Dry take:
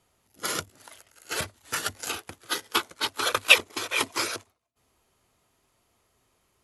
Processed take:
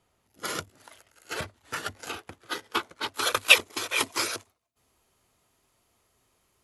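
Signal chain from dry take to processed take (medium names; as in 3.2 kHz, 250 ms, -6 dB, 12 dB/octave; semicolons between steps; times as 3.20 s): treble shelf 4.3 kHz -5.5 dB, from 1.34 s -11 dB, from 3.14 s +2.5 dB; trim -1 dB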